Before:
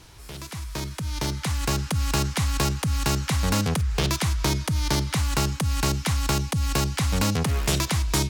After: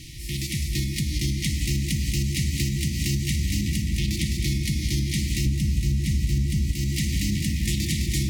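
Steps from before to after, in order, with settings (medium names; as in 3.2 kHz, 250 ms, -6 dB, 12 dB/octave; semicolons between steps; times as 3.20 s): 2.29–3.20 s: high-pass 68 Hz 24 dB/octave; two-band feedback delay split 390 Hz, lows 533 ms, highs 210 ms, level -5 dB; reverberation RT60 3.5 s, pre-delay 3 ms, DRR 2.5 dB; FFT band-reject 360–1800 Hz; 5.46–6.72 s: bass shelf 250 Hz +10 dB; compression 5:1, threshold -31 dBFS, peak gain reduction 20.5 dB; modulated delay 334 ms, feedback 75%, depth 52 cents, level -22 dB; trim +8 dB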